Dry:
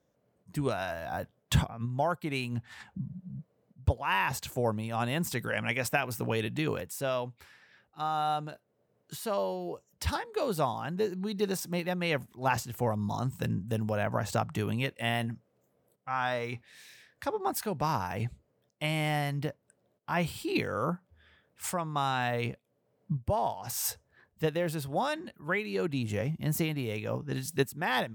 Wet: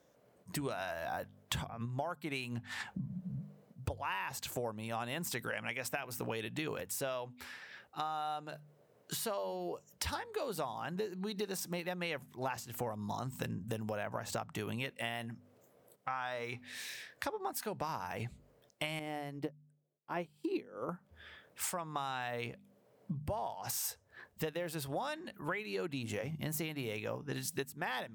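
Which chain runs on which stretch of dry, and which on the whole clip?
18.99–20.89 s: peaking EQ 350 Hz +13 dB 1.9 oct + upward expansion 2.5:1, over -35 dBFS
whole clip: bass shelf 270 Hz -8 dB; de-hum 49.63 Hz, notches 5; compression 6:1, threshold -45 dBFS; trim +8.5 dB

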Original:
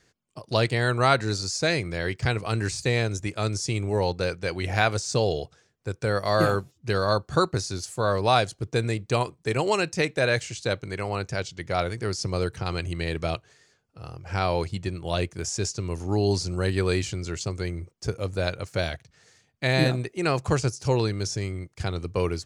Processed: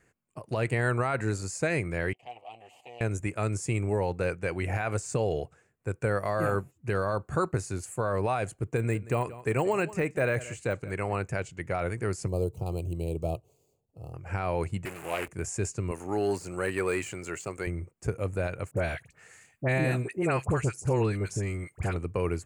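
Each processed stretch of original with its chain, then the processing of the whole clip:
2.13–3.01 s: comb filter that takes the minimum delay 8.2 ms + compression 1.5:1, threshold -32 dBFS + two resonant band-passes 1.5 kHz, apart 2 oct
8.77–11.15 s: de-esser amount 80% + delay 178 ms -18.5 dB
12.28–14.14 s: median filter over 5 samples + Butterworth band-stop 1.7 kHz, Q 0.53 + peaking EQ 220 Hz -4.5 dB 0.75 oct
14.85–15.28 s: jump at every zero crossing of -30 dBFS + high-pass 850 Hz 6 dB/octave + loudspeaker Doppler distortion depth 0.28 ms
15.91–17.67 s: de-esser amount 80% + high-pass 590 Hz 6 dB/octave + waveshaping leveller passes 1
18.71–21.96 s: phase dispersion highs, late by 58 ms, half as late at 1.3 kHz + tape noise reduction on one side only encoder only
whole clip: peak limiter -16 dBFS; high-order bell 4.4 kHz -15 dB 1.1 oct; trim -1 dB

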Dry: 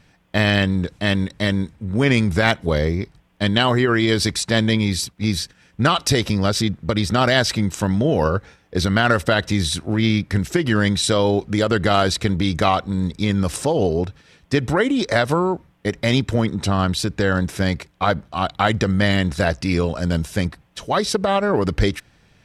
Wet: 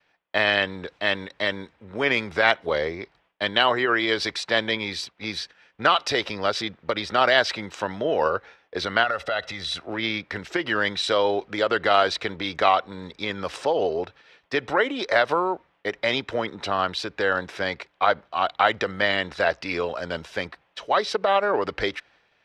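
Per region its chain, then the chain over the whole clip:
9.03–9.82 s: comb 1.5 ms, depth 49% + compression 12:1, threshold -18 dBFS
whole clip: expander -49 dBFS; three-band isolator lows -21 dB, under 400 Hz, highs -23 dB, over 4.6 kHz

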